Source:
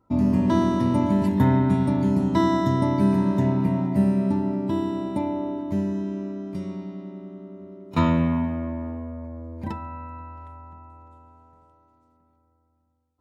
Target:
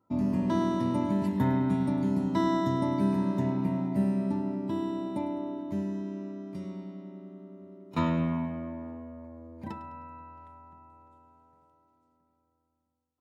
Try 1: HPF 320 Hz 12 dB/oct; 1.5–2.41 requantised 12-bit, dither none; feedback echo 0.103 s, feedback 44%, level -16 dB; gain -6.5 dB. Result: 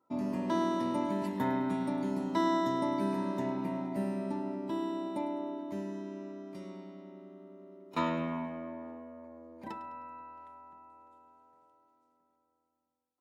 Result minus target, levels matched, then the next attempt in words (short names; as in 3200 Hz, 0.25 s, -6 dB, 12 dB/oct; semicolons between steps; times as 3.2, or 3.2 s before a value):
125 Hz band -6.0 dB
HPF 110 Hz 12 dB/oct; 1.5–2.41 requantised 12-bit, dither none; feedback echo 0.103 s, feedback 44%, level -16 dB; gain -6.5 dB